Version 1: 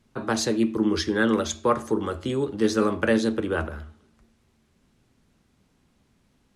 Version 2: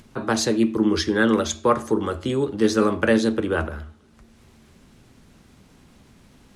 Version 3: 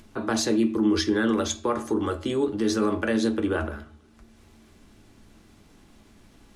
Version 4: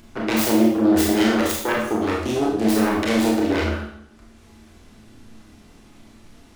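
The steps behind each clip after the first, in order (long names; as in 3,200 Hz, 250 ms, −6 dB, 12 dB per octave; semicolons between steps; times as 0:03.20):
upward compression, threshold −44 dBFS; level +3 dB
brickwall limiter −13 dBFS, peak gain reduction 7.5 dB; on a send at −8 dB: convolution reverb RT60 0.25 s, pre-delay 3 ms; on the sum: level −2.5 dB
phase distortion by the signal itself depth 0.41 ms; four-comb reverb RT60 0.63 s, combs from 25 ms, DRR −2.5 dB; level +1.5 dB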